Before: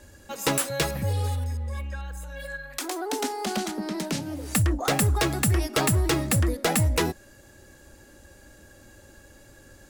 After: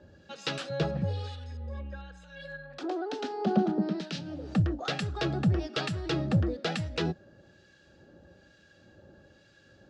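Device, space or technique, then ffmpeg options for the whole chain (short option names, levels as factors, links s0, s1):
guitar amplifier with harmonic tremolo: -filter_complex "[0:a]acrossover=split=1300[s0][s1];[s0]aeval=exprs='val(0)*(1-0.7/2+0.7/2*cos(2*PI*1.1*n/s))':c=same[s2];[s1]aeval=exprs='val(0)*(1-0.7/2-0.7/2*cos(2*PI*1.1*n/s))':c=same[s3];[s2][s3]amix=inputs=2:normalize=0,asoftclip=type=tanh:threshold=0.168,highpass=96,equalizer=f=170:t=q:w=4:g=7,equalizer=f=270:t=q:w=4:g=-4,equalizer=f=1000:t=q:w=4:g=-10,equalizer=f=2100:t=q:w=4:g=-9,lowpass=f=4600:w=0.5412,lowpass=f=4600:w=1.3066,asettb=1/sr,asplit=3[s4][s5][s6];[s4]atrim=end=2.834[s7];[s5]atrim=start=2.83:end=4.01,asetpts=PTS-STARTPTS,afade=t=in:d=0.004:c=qsin,afade=t=out:st=1.176:d=0.004:c=qsin,tiltshelf=f=1500:g=6.5[s8];[s6]atrim=start=4.006[s9];[s7][s8]acrossfade=d=0.004:c1=hsin:c2=qsin[s10];[s10][s9]acrossfade=d=0.004:c1=qsin:c2=hsin"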